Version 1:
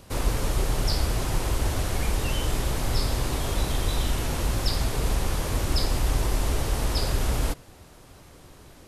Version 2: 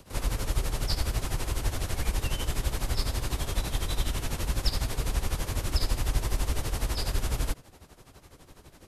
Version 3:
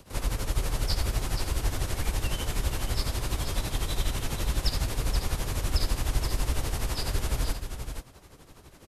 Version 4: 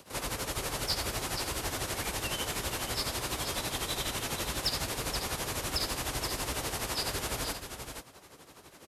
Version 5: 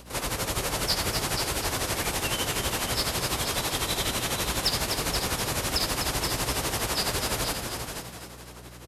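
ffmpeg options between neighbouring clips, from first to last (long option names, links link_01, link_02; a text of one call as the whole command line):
ffmpeg -i in.wav -filter_complex "[0:a]tremolo=f=12:d=0.76,acrossover=split=150|1300|3600[link_01][link_02][link_03][link_04];[link_02]asoftclip=type=tanh:threshold=-35.5dB[link_05];[link_01][link_05][link_03][link_04]amix=inputs=4:normalize=0" out.wav
ffmpeg -i in.wav -af "aecho=1:1:477:0.422" out.wav
ffmpeg -i in.wav -filter_complex "[0:a]highpass=frequency=340:poles=1,asplit=2[link_01][link_02];[link_02]aeval=exprs='0.0447*(abs(mod(val(0)/0.0447+3,4)-2)-1)':channel_layout=same,volume=-11dB[link_03];[link_01][link_03]amix=inputs=2:normalize=0" out.wav
ffmpeg -i in.wav -filter_complex "[0:a]aeval=exprs='val(0)+0.00224*(sin(2*PI*60*n/s)+sin(2*PI*2*60*n/s)/2+sin(2*PI*3*60*n/s)/3+sin(2*PI*4*60*n/s)/4+sin(2*PI*5*60*n/s)/5)':channel_layout=same,asplit=7[link_01][link_02][link_03][link_04][link_05][link_06][link_07];[link_02]adelay=250,afreqshift=60,volume=-7.5dB[link_08];[link_03]adelay=500,afreqshift=120,volume=-13.7dB[link_09];[link_04]adelay=750,afreqshift=180,volume=-19.9dB[link_10];[link_05]adelay=1000,afreqshift=240,volume=-26.1dB[link_11];[link_06]adelay=1250,afreqshift=300,volume=-32.3dB[link_12];[link_07]adelay=1500,afreqshift=360,volume=-38.5dB[link_13];[link_01][link_08][link_09][link_10][link_11][link_12][link_13]amix=inputs=7:normalize=0,volume=5dB" out.wav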